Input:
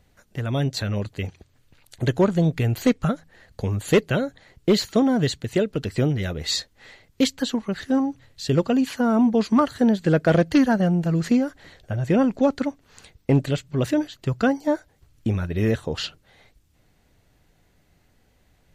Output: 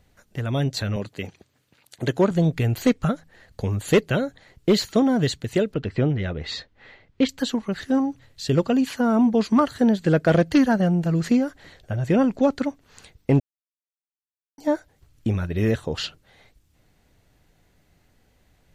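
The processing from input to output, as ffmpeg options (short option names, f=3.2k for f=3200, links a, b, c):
-filter_complex "[0:a]asettb=1/sr,asplit=3[a][b][c];[a]atrim=end=0.964[d];[b]atrim=start=0.96:end=2.31,asetpts=PTS-STARTPTS,afade=t=in:d=0.004:c=qsin,afade=t=out:st=1.346:d=0.004:c=qsin,highpass=150[e];[c]atrim=start=2.306[f];[d][e]acrossfade=d=0.004:c1=hsin:c2=qsin[g];[g][f]acrossfade=d=0.004:c1=qsin:c2=hsin,asettb=1/sr,asplit=3[h][i][j];[h]atrim=end=5.744[k];[i]atrim=start=5.74:end=7.29,asetpts=PTS-STARTPTS,afade=t=in:d=0.004:c=qsin,afade=t=out:st=1.546:d=0.004:c=qsin,lowpass=3k[l];[j]atrim=start=7.286[m];[k][l]acrossfade=d=0.004:c1=hsin:c2=qsin[n];[n][m]acrossfade=d=0.004:c1=qsin:c2=hsin,asplit=3[o][p][q];[o]atrim=end=13.4,asetpts=PTS-STARTPTS,afade=t=out:st=13.396:d=0.004:c=hsin[r];[p]atrim=start=13.4:end=14.58,asetpts=PTS-STARTPTS,volume=0[s];[q]atrim=start=14.58,asetpts=PTS-STARTPTS,afade=t=in:d=0.004:c=hsin[t];[r][s][t]concat=n=3:v=0:a=1"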